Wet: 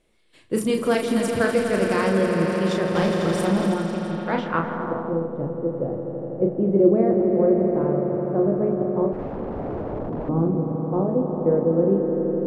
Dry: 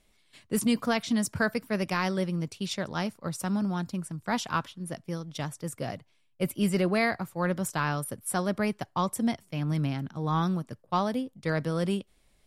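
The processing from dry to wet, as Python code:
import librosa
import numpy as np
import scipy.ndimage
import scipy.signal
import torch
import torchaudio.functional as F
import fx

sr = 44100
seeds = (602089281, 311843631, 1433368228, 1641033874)

p1 = fx.small_body(x, sr, hz=(350.0, 490.0), ring_ms=45, db=10)
p2 = fx.backlash(p1, sr, play_db=-26.5)
p3 = p1 + (p2 * librosa.db_to_amplitude(-12.0))
p4 = fx.peak_eq(p3, sr, hz=6200.0, db=-7.5, octaves=1.3)
p5 = fx.hum_notches(p4, sr, base_hz=60, count=4)
p6 = fx.doubler(p5, sr, ms=36.0, db=-5)
p7 = fx.echo_swell(p6, sr, ms=83, loudest=5, wet_db=-10)
p8 = fx.overflow_wrap(p7, sr, gain_db=21.0, at=(9.12, 10.29))
p9 = fx.filter_sweep_lowpass(p8, sr, from_hz=9000.0, to_hz=520.0, start_s=3.76, end_s=5.3, q=1.1)
y = fx.leveller(p9, sr, passes=1, at=(2.95, 3.74))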